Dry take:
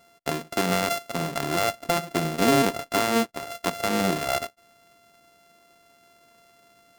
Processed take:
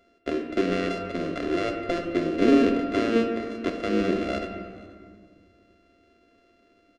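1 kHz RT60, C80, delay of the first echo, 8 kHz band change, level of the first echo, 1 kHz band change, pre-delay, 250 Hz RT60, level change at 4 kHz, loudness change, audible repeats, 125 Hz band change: 1.9 s, 7.0 dB, 477 ms, under -15 dB, -22.5 dB, -7.0 dB, 3 ms, 2.5 s, -7.5 dB, -0.5 dB, 1, -5.0 dB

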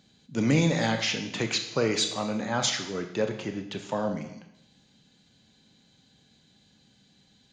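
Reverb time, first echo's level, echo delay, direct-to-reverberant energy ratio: 0.80 s, no echo, no echo, 5.5 dB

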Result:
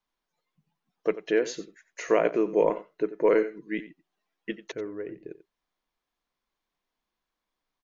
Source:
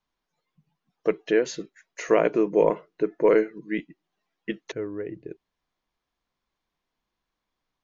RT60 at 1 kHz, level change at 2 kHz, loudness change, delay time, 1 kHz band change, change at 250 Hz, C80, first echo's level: no reverb, -2.0 dB, -2.5 dB, 90 ms, -2.0 dB, -3.0 dB, no reverb, -15.0 dB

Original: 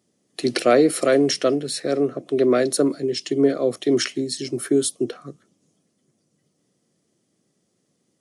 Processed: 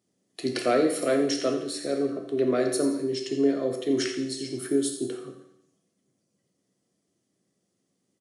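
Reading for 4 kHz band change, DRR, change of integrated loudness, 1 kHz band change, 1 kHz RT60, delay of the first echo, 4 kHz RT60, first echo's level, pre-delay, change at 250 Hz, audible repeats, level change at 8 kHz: -6.5 dB, 2.5 dB, -5.5 dB, -5.5 dB, 0.75 s, 86 ms, 0.75 s, -10.5 dB, 11 ms, -5.0 dB, 1, -6.5 dB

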